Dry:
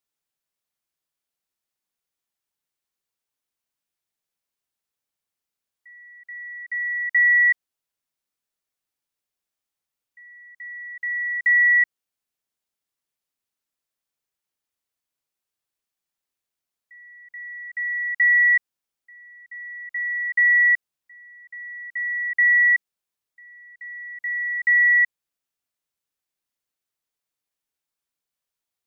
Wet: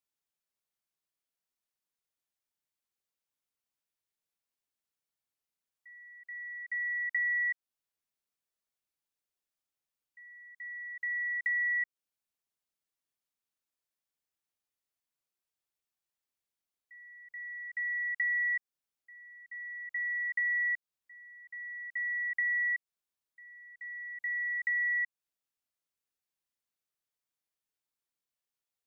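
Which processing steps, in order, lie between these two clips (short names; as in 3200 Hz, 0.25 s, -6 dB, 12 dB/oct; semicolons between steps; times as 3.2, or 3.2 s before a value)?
compressor 3:1, threshold -26 dBFS, peak gain reduction 8 dB; gain -6 dB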